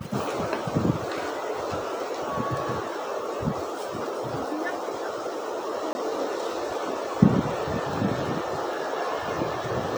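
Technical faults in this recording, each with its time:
5.93–5.95 s: dropout 20 ms

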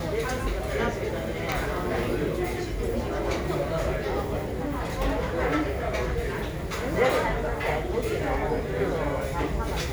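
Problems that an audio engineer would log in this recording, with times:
1.52 s: pop -11 dBFS

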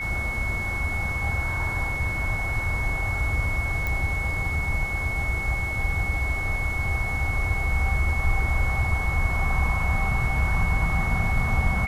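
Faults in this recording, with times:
whine 2.2 kHz -28 dBFS
3.87 s: pop

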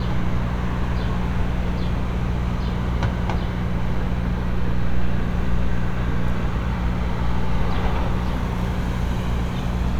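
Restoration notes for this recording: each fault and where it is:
hum 60 Hz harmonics 3 -25 dBFS

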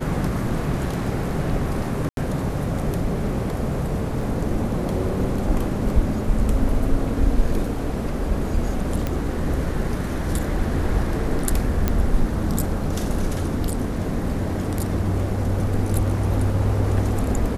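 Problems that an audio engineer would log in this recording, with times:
2.09–2.17 s: dropout 82 ms
4.21 s: dropout 3.2 ms
9.07 s: pop -11 dBFS
11.88 s: pop -7 dBFS

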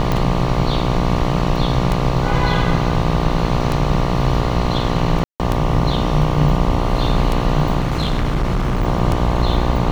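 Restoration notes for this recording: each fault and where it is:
buzz 60 Hz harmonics 20 -21 dBFS
tick 33 1/3 rpm -6 dBFS
5.24–5.40 s: dropout 158 ms
7.79–8.85 s: clipped -14 dBFS

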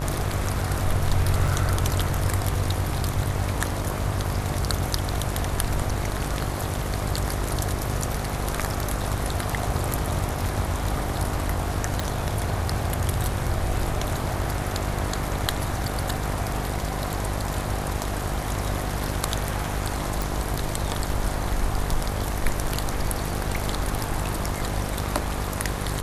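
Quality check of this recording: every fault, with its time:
buzz 50 Hz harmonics 25 -30 dBFS
1.48 s: dropout 3.7 ms
12.00 s: pop
20.22 s: pop

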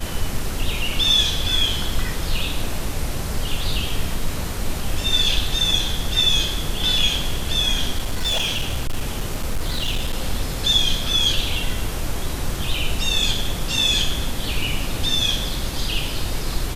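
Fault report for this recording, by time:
7.98–10.13 s: clipped -17.5 dBFS

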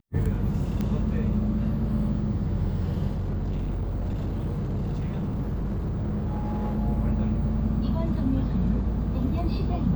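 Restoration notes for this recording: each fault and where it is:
0.81 s: pop -17 dBFS
3.14–6.79 s: clipped -24.5 dBFS

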